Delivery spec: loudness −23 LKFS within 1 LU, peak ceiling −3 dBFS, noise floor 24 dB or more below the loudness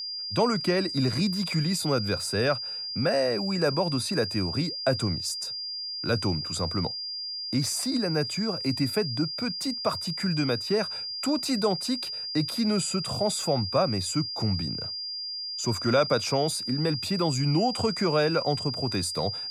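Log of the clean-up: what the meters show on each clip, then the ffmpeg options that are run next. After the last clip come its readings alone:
interfering tone 4,800 Hz; level of the tone −32 dBFS; integrated loudness −27.0 LKFS; sample peak −10.0 dBFS; target loudness −23.0 LKFS
→ -af "bandreject=frequency=4800:width=30"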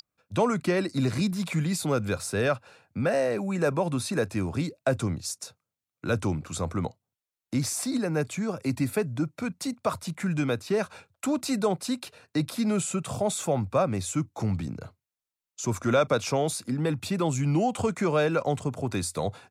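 interfering tone none found; integrated loudness −28.5 LKFS; sample peak −11.0 dBFS; target loudness −23.0 LKFS
→ -af "volume=5.5dB"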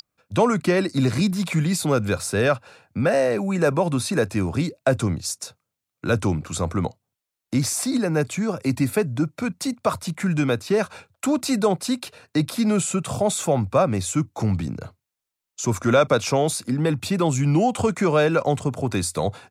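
integrated loudness −23.0 LKFS; sample peak −5.5 dBFS; background noise floor −85 dBFS

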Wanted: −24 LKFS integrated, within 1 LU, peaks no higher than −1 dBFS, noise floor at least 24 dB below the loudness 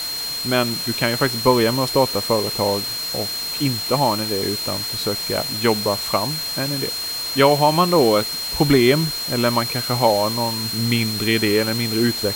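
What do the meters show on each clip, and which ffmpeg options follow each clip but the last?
interfering tone 4,200 Hz; level of the tone −25 dBFS; background noise floor −27 dBFS; target noise floor −43 dBFS; integrated loudness −19.0 LKFS; sample peak −1.0 dBFS; target loudness −24.0 LKFS
→ -af "bandreject=frequency=4200:width=30"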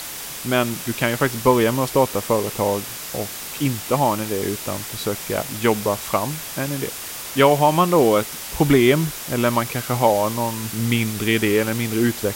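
interfering tone none found; background noise floor −33 dBFS; target noise floor −45 dBFS
→ -af "afftdn=noise_reduction=12:noise_floor=-33"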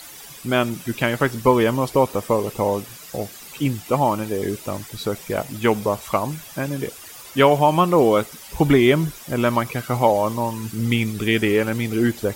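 background noise floor −41 dBFS; target noise floor −45 dBFS
→ -af "afftdn=noise_reduction=6:noise_floor=-41"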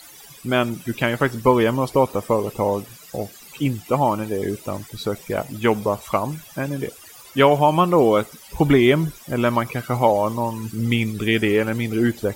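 background noise floor −44 dBFS; target noise floor −45 dBFS
→ -af "afftdn=noise_reduction=6:noise_floor=-44"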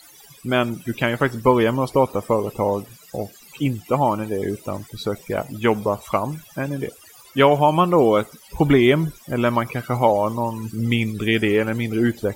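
background noise floor −48 dBFS; integrated loudness −21.0 LKFS; sample peak −1.5 dBFS; target loudness −24.0 LKFS
→ -af "volume=-3dB"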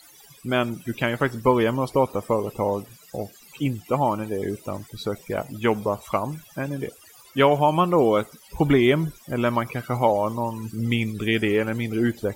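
integrated loudness −24.0 LKFS; sample peak −4.5 dBFS; background noise floor −51 dBFS

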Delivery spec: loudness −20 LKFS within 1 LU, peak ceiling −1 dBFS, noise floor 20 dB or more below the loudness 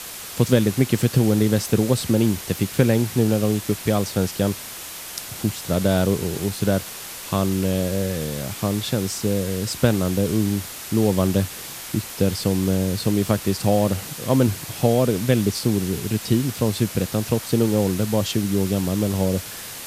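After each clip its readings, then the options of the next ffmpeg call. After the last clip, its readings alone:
background noise floor −35 dBFS; target noise floor −42 dBFS; integrated loudness −22.0 LKFS; sample peak −2.0 dBFS; target loudness −20.0 LKFS
→ -af "afftdn=noise_reduction=7:noise_floor=-35"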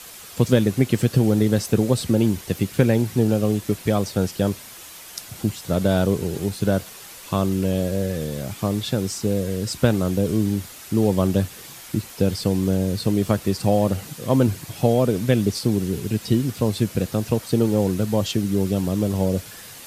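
background noise floor −41 dBFS; target noise floor −42 dBFS
→ -af "afftdn=noise_reduction=6:noise_floor=-41"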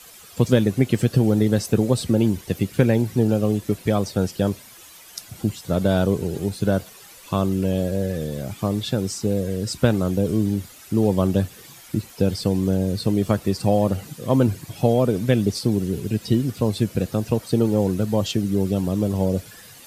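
background noise floor −45 dBFS; integrated loudness −22.0 LKFS; sample peak −2.0 dBFS; target loudness −20.0 LKFS
→ -af "volume=2dB,alimiter=limit=-1dB:level=0:latency=1"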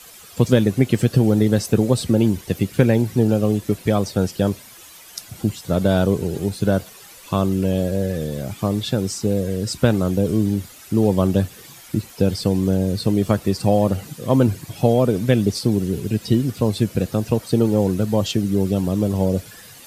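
integrated loudness −20.0 LKFS; sample peak −1.0 dBFS; background noise floor −43 dBFS

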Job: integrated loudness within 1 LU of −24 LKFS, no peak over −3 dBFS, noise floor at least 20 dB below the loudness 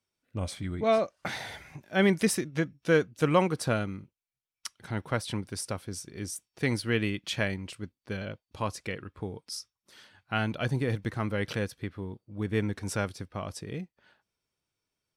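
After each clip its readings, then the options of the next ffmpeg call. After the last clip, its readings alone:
integrated loudness −31.0 LKFS; sample peak −11.5 dBFS; target loudness −24.0 LKFS
→ -af "volume=7dB"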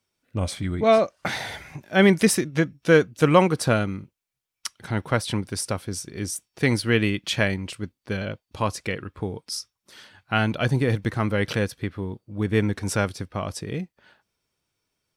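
integrated loudness −24.0 LKFS; sample peak −4.5 dBFS; background noise floor −83 dBFS

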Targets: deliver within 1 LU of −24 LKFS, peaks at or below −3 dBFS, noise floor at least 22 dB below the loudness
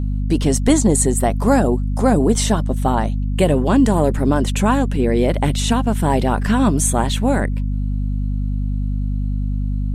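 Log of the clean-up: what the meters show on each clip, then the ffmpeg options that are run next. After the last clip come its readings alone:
mains hum 50 Hz; hum harmonics up to 250 Hz; level of the hum −18 dBFS; integrated loudness −18.0 LKFS; sample peak −1.0 dBFS; target loudness −24.0 LKFS
→ -af "bandreject=frequency=50:width_type=h:width=6,bandreject=frequency=100:width_type=h:width=6,bandreject=frequency=150:width_type=h:width=6,bandreject=frequency=200:width_type=h:width=6,bandreject=frequency=250:width_type=h:width=6"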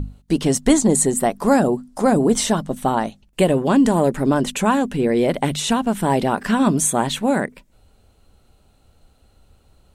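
mains hum none found; integrated loudness −18.5 LKFS; sample peak −2.5 dBFS; target loudness −24.0 LKFS
→ -af "volume=-5.5dB"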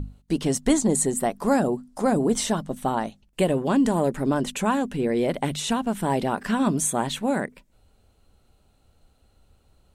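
integrated loudness −24.0 LKFS; sample peak −8.0 dBFS; background noise floor −63 dBFS

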